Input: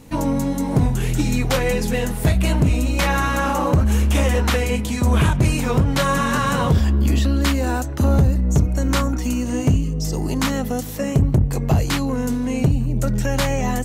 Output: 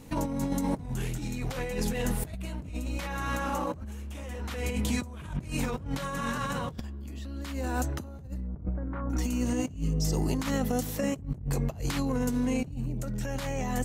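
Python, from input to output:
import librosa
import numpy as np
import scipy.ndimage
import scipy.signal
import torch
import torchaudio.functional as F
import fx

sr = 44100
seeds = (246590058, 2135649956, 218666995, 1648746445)

y = fx.lowpass(x, sr, hz=1600.0, slope=24, at=(8.47, 9.1))
y = fx.over_compress(y, sr, threshold_db=-22.0, ratio=-0.5)
y = y * 10.0 ** (-8.5 / 20.0)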